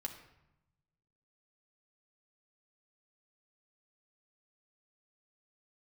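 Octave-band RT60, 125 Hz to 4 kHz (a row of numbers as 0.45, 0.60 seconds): 1.6, 1.2, 0.85, 0.90, 0.80, 0.60 seconds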